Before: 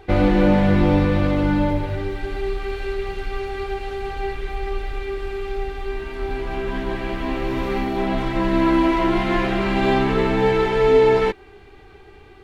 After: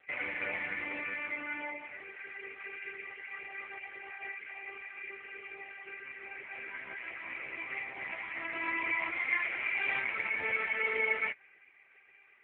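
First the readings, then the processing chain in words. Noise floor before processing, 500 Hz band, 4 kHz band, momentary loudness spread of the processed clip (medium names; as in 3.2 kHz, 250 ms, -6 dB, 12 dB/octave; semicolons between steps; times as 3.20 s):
-45 dBFS, -25.5 dB, -16.0 dB, 14 LU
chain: local Wiener filter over 9 samples; band-pass filter 2.2 kHz, Q 6.3; trim +7.5 dB; AMR-NB 5.15 kbps 8 kHz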